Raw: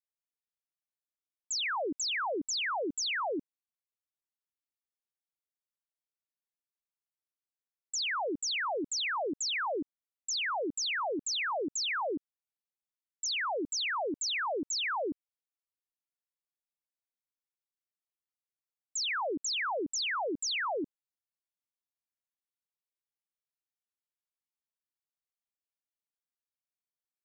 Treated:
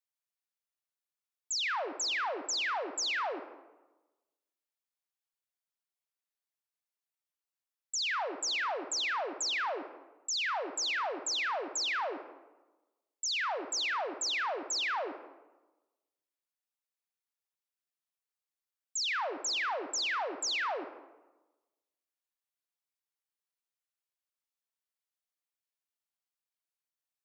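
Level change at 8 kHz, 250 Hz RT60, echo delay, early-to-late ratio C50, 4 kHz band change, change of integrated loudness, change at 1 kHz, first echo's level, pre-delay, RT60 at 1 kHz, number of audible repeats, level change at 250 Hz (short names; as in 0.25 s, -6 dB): 0.0 dB, 1.2 s, none, 10.5 dB, 0.0 dB, 0.0 dB, 0.0 dB, none, 39 ms, 1.1 s, none, -9.5 dB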